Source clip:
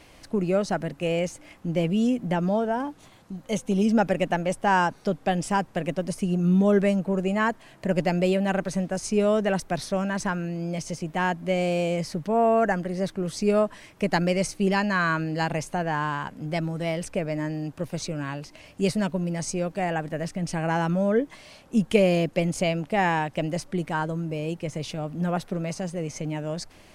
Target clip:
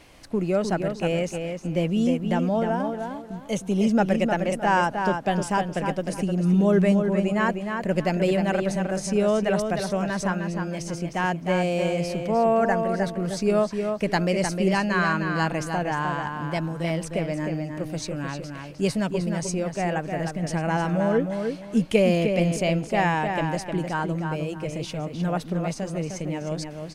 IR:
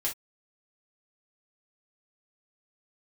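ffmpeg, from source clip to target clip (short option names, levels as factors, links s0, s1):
-filter_complex "[0:a]asplit=2[s0][s1];[s1]adelay=307,lowpass=f=4200:p=1,volume=0.531,asplit=2[s2][s3];[s3]adelay=307,lowpass=f=4200:p=1,volume=0.28,asplit=2[s4][s5];[s5]adelay=307,lowpass=f=4200:p=1,volume=0.28,asplit=2[s6][s7];[s7]adelay=307,lowpass=f=4200:p=1,volume=0.28[s8];[s0][s2][s4][s6][s8]amix=inputs=5:normalize=0"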